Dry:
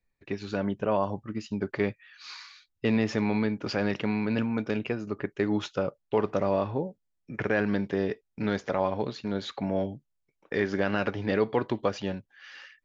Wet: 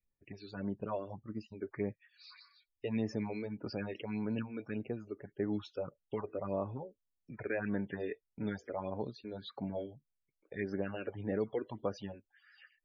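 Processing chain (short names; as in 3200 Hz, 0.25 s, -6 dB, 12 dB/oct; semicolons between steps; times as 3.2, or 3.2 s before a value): loudest bins only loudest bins 64; phaser stages 4, 1.7 Hz, lowest notch 140–3400 Hz; 6.68–8.5 dynamic EQ 1900 Hz, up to +6 dB, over -50 dBFS, Q 0.83; gain -8.5 dB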